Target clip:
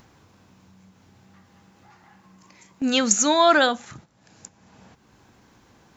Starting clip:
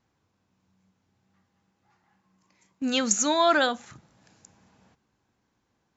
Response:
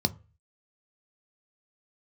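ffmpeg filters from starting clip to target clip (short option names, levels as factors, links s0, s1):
-filter_complex "[0:a]agate=range=0.224:threshold=0.00224:ratio=16:detection=peak,asplit=2[s0][s1];[s1]acompressor=mode=upward:threshold=0.0355:ratio=2.5,volume=1.12[s2];[s0][s2]amix=inputs=2:normalize=0,volume=0.794"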